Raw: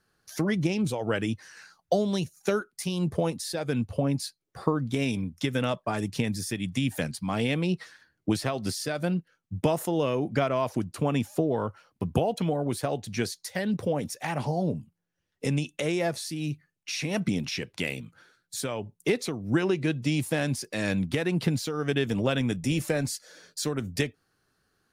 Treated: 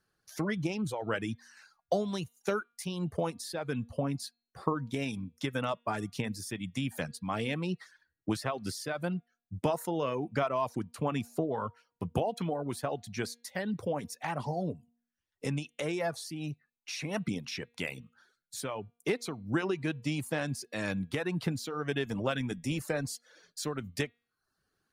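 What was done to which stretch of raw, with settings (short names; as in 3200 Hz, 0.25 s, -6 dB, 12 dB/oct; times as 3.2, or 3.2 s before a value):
16.12–16.94 bell 740 Hz +11 dB 0.67 oct
whole clip: de-hum 236.7 Hz, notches 18; reverb removal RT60 0.55 s; dynamic EQ 1100 Hz, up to +6 dB, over -43 dBFS, Q 1.1; gain -6 dB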